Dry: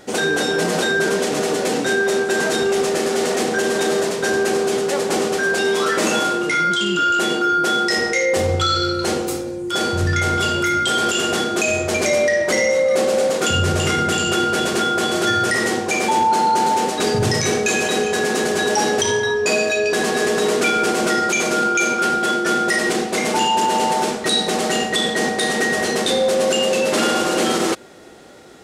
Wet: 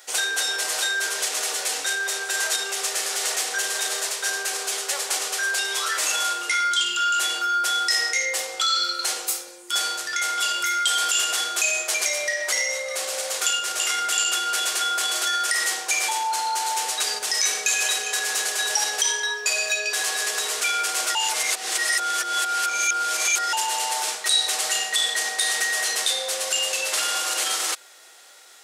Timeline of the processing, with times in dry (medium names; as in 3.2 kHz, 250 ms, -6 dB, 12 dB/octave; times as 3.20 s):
21.15–23.53 s: reverse
whole clip: peak limiter -11 dBFS; high-pass 730 Hz 12 dB/octave; tilt EQ +3.5 dB/octave; trim -5.5 dB